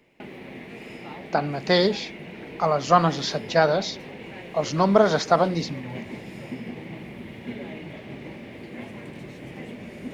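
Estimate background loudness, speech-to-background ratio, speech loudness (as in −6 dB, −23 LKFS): −38.5 LKFS, 16.0 dB, −22.5 LKFS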